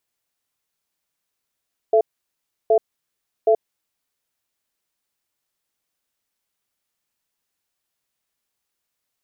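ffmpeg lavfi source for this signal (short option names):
-f lavfi -i "aevalsrc='0.188*(sin(2*PI*438*t)+sin(2*PI*672*t))*clip(min(mod(t,0.77),0.08-mod(t,0.77))/0.005,0,1)':d=2.05:s=44100"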